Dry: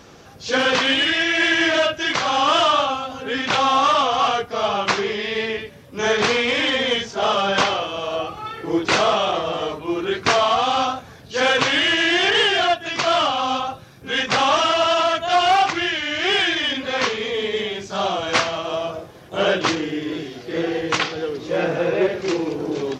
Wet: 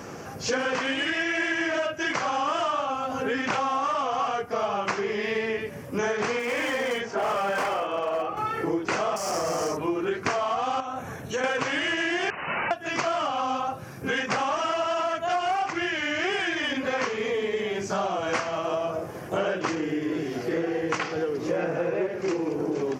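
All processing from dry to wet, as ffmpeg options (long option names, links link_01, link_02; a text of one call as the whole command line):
ffmpeg -i in.wav -filter_complex "[0:a]asettb=1/sr,asplit=3[link_01][link_02][link_03];[link_01]atrim=end=6.394[link_04];[link_02]atrim=start=6.39:end=8.37,asetpts=PTS-STARTPTS,afade=type=in:duration=0.004:curve=qsin,afade=type=out:start_time=1.976:duration=0.004:curve=qsin,bass=frequency=250:gain=-9,treble=frequency=4000:gain=-13,asoftclip=type=hard:threshold=-20.5dB[link_05];[link_03]atrim=start=8.366[link_06];[link_04][link_05]acrossfade=duration=0.004:curve1=hsin:curve2=qsin[link_07];[link_07][link_06]acrossfade=duration=0.004:curve1=qsin:curve2=hsin,asettb=1/sr,asplit=3[link_08][link_09][link_10];[link_08]atrim=end=9.164[link_11];[link_09]atrim=start=9.16:end=9.77,asetpts=PTS-STARTPTS,afade=type=in:duration=0.004:curve=qsin,afade=type=out:start_time=0.606:duration=0.004:curve=qsin,volume=23.5dB,asoftclip=hard,volume=-23.5dB,highshelf=frequency=4300:width_type=q:width=3:gain=8.5[link_12];[link_10]atrim=start=9.766[link_13];[link_11][link_12]acrossfade=duration=0.004:curve1=hsin:curve2=qsin[link_14];[link_14][link_13]acrossfade=duration=0.004:curve1=qsin:curve2=hsin,asettb=1/sr,asplit=3[link_15][link_16][link_17];[link_15]atrim=end=10.804[link_18];[link_16]atrim=start=10.8:end=11.44,asetpts=PTS-STARTPTS,afade=type=in:duration=0.004:curve=qsin,afade=type=out:start_time=0.636:duration=0.004:curve=qsin,acompressor=threshold=-29dB:ratio=3:attack=3.2:release=140:knee=1:detection=peak,asuperstop=centerf=4800:order=4:qfactor=4.5[link_19];[link_17]atrim=start=11.436[link_20];[link_18][link_19]acrossfade=duration=0.004:curve1=hsin:curve2=qsin[link_21];[link_21][link_20]acrossfade=duration=0.004:curve1=qsin:curve2=hsin,asettb=1/sr,asplit=3[link_22][link_23][link_24];[link_22]atrim=end=12.304[link_25];[link_23]atrim=start=12.3:end=12.71,asetpts=PTS-STARTPTS,afade=type=in:duration=0.004:curve=qsin,afade=type=out:start_time=0.406:duration=0.004:curve=qsin,aeval=exprs='0.0944*(abs(mod(val(0)/0.0944+3,4)-2)-1)':channel_layout=same,lowpass=frequency=2600:width_type=q:width=0.5098,lowpass=frequency=2600:width_type=q:width=0.6013,lowpass=frequency=2600:width_type=q:width=0.9,lowpass=frequency=2600:width_type=q:width=2.563,afreqshift=-3000[link_26];[link_24]atrim=start=12.706[link_27];[link_25][link_26]acrossfade=duration=0.004:curve1=hsin:curve2=qsin[link_28];[link_28][link_27]acrossfade=duration=0.004:curve1=qsin:curve2=hsin,equalizer=frequency=3700:width=2.2:gain=-14.5,acompressor=threshold=-32dB:ratio=6,highpass=96,volume=7dB" out.wav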